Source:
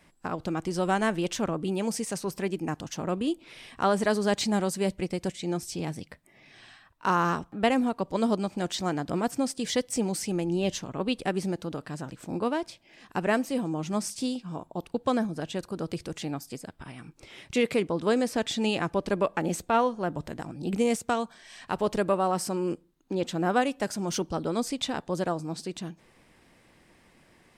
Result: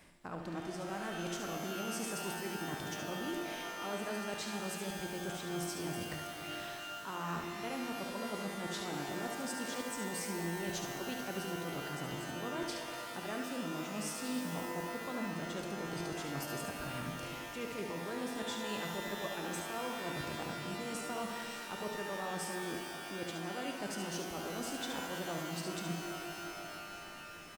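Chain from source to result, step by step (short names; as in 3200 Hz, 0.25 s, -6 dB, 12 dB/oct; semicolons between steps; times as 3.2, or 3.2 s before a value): high shelf 8600 Hz +5.5 dB; reverse; compressor 8:1, threshold -40 dBFS, peak gain reduction 22 dB; reverse; echo 71 ms -6.5 dB; shimmer reverb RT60 3.5 s, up +12 st, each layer -2 dB, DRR 4 dB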